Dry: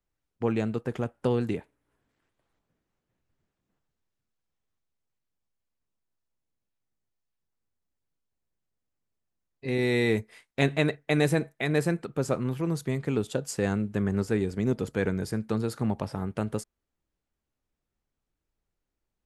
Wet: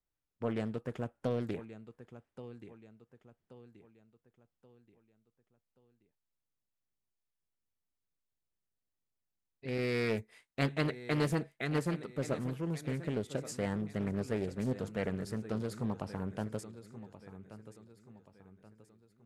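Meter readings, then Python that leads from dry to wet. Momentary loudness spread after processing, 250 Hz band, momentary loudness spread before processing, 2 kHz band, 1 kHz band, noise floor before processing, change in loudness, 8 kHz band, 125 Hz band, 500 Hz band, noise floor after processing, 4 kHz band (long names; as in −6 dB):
19 LU, −7.5 dB, 8 LU, −8.0 dB, −6.0 dB, −85 dBFS, −7.5 dB, −8.0 dB, −7.0 dB, −7.5 dB, below −85 dBFS, −7.5 dB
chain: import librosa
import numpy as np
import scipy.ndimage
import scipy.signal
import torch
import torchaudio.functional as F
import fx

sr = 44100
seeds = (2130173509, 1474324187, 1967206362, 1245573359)

p1 = x + fx.echo_feedback(x, sr, ms=1129, feedback_pct=41, wet_db=-14.0, dry=0)
p2 = fx.doppler_dist(p1, sr, depth_ms=0.49)
y = F.gain(torch.from_numpy(p2), -7.5).numpy()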